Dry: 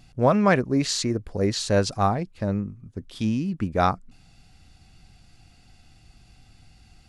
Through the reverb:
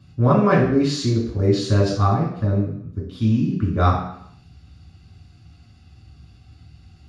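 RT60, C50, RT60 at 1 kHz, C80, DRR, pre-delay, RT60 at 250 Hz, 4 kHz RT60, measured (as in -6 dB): 0.70 s, 4.0 dB, 0.70 s, 7.5 dB, -3.5 dB, 3 ms, 0.70 s, 0.70 s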